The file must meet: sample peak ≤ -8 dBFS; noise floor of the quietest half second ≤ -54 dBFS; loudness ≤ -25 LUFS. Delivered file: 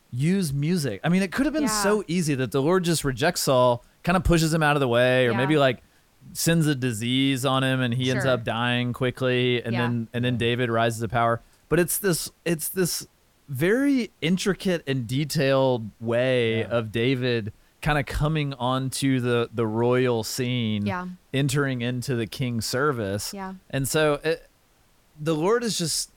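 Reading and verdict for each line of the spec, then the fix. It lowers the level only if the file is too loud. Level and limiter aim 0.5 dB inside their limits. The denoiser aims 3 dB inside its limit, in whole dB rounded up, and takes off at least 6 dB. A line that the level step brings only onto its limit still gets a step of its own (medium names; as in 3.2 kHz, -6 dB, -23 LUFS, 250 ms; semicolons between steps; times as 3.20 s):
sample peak -9.0 dBFS: pass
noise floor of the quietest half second -61 dBFS: pass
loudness -24.0 LUFS: fail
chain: trim -1.5 dB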